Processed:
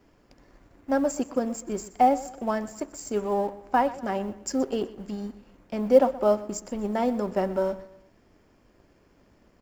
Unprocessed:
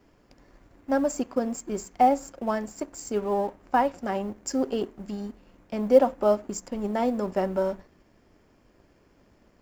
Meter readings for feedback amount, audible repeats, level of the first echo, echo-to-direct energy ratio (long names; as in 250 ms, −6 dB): 39%, 3, −17.5 dB, −17.0 dB